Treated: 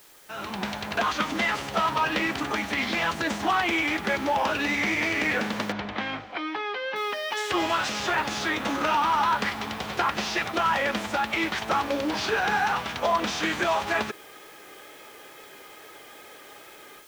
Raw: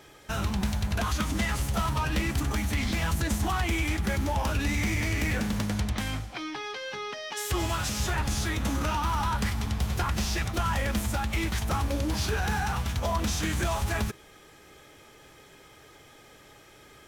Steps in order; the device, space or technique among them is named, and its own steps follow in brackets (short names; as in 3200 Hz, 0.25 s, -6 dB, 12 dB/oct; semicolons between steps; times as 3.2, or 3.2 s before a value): dictaphone (BPF 350–3800 Hz; AGC gain up to 14.5 dB; wow and flutter 27 cents; white noise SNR 26 dB); 5.72–6.96 air absorption 190 m; gain -7 dB